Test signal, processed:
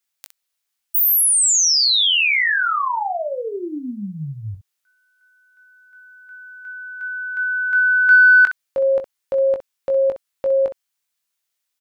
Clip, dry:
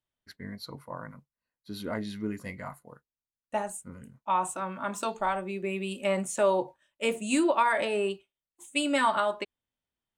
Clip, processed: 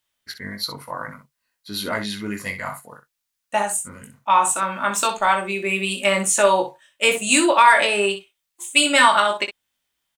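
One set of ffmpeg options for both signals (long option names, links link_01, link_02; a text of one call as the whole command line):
ffmpeg -i in.wav -filter_complex "[0:a]tiltshelf=frequency=840:gain=-7,acontrast=58,asplit=2[link_01][link_02];[link_02]aecho=0:1:20|63:0.473|0.299[link_03];[link_01][link_03]amix=inputs=2:normalize=0,volume=2.5dB" out.wav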